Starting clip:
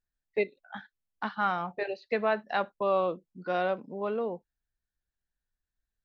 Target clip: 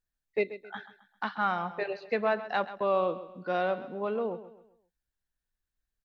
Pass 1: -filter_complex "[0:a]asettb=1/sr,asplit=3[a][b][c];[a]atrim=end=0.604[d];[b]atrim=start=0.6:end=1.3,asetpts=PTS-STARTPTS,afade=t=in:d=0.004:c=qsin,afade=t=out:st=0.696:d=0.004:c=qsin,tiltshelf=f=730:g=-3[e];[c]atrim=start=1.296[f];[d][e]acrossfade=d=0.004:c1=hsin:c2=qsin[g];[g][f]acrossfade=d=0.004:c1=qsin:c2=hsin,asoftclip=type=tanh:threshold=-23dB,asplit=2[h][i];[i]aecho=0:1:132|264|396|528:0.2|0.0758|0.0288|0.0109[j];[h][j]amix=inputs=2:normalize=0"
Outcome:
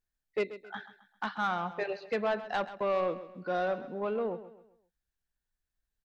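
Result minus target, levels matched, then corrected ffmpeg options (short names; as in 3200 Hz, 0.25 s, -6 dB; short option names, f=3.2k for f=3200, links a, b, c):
soft clip: distortion +18 dB
-filter_complex "[0:a]asettb=1/sr,asplit=3[a][b][c];[a]atrim=end=0.604[d];[b]atrim=start=0.6:end=1.3,asetpts=PTS-STARTPTS,afade=t=in:d=0.004:c=qsin,afade=t=out:st=0.696:d=0.004:c=qsin,tiltshelf=f=730:g=-3[e];[c]atrim=start=1.296[f];[d][e]acrossfade=d=0.004:c1=hsin:c2=qsin[g];[g][f]acrossfade=d=0.004:c1=qsin:c2=hsin,asoftclip=type=tanh:threshold=-11.5dB,asplit=2[h][i];[i]aecho=0:1:132|264|396|528:0.2|0.0758|0.0288|0.0109[j];[h][j]amix=inputs=2:normalize=0"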